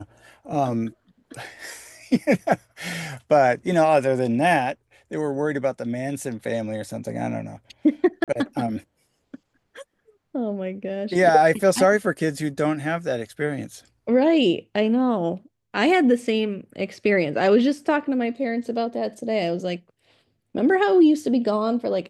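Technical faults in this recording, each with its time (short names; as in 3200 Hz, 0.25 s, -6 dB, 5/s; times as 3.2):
8.24–8.28 gap 37 ms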